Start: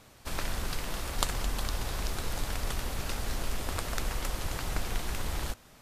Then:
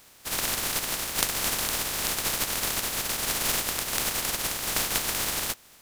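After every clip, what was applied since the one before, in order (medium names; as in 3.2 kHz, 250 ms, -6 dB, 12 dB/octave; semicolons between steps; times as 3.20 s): spectral contrast reduction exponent 0.21; trim +2 dB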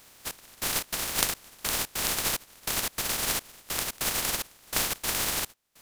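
trance gate "xxx...xx.x" 146 bpm -24 dB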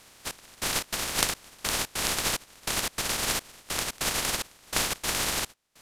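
Bessel low-pass 10 kHz, order 2; trim +2 dB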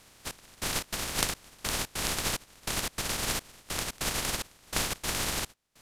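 bass shelf 240 Hz +6 dB; trim -3.5 dB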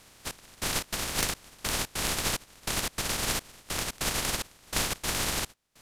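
overload inside the chain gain 19 dB; trim +1.5 dB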